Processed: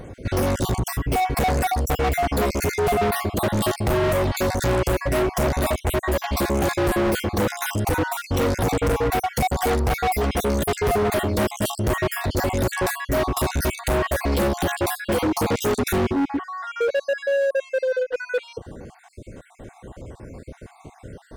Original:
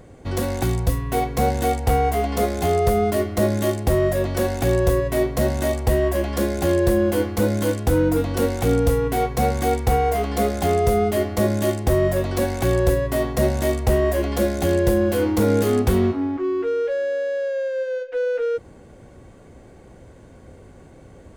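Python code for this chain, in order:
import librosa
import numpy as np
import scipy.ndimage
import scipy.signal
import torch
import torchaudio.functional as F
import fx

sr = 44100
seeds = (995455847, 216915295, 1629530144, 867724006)

y = fx.spec_dropout(x, sr, seeds[0], share_pct=49)
y = fx.comb(y, sr, ms=0.8, depth=0.44, at=(13.29, 13.81))
y = np.clip(y, -10.0 ** (-26.0 / 20.0), 10.0 ** (-26.0 / 20.0))
y = y * librosa.db_to_amplitude(7.5)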